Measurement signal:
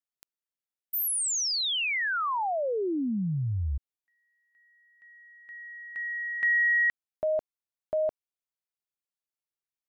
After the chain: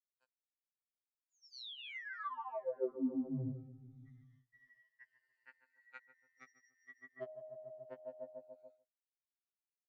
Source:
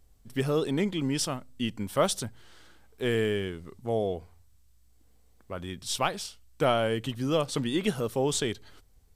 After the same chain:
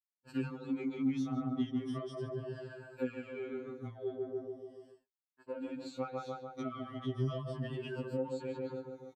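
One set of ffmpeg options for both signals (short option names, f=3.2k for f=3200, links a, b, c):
-filter_complex "[0:a]afftfilt=real='re*pow(10,18/40*sin(2*PI*(1.3*log(max(b,1)*sr/1024/100)/log(2)-(-0.38)*(pts-256)/sr)))':imag='im*pow(10,18/40*sin(2*PI*(1.3*log(max(b,1)*sr/1024/100)/log(2)-(-0.38)*(pts-256)/sr)))':win_size=1024:overlap=0.75,flanger=delay=1.1:depth=2.5:regen=31:speed=0.8:shape=sinusoidal,asplit=2[a][b];[b]adelay=144,lowpass=f=840:p=1,volume=-4.5dB,asplit=2[c][d];[d]adelay=144,lowpass=f=840:p=1,volume=0.55,asplit=2[e][f];[f]adelay=144,lowpass=f=840:p=1,volume=0.55,asplit=2[g][h];[h]adelay=144,lowpass=f=840:p=1,volume=0.55,asplit=2[i][j];[j]adelay=144,lowpass=f=840:p=1,volume=0.55,asplit=2[k][l];[l]adelay=144,lowpass=f=840:p=1,volume=0.55,asplit=2[m][n];[n]adelay=144,lowpass=f=840:p=1,volume=0.55[o];[a][c][e][g][i][k][m][o]amix=inputs=8:normalize=0,acompressor=threshold=-37dB:ratio=16:attack=48:release=94:knee=1:detection=rms,asoftclip=type=tanh:threshold=-29dB,acrossover=split=400[p][q];[q]acompressor=threshold=-54dB:ratio=6:attack=11:release=505:knee=2.83:detection=peak[r];[p][r]amix=inputs=2:normalize=0,highpass=190,lowpass=4.1k,equalizer=f=1.3k:w=2.5:g=6.5,agate=range=-59dB:threshold=-60dB:ratio=16:release=423:detection=peak,afftfilt=real='re*2.45*eq(mod(b,6),0)':imag='im*2.45*eq(mod(b,6),0)':win_size=2048:overlap=0.75,volume=9dB"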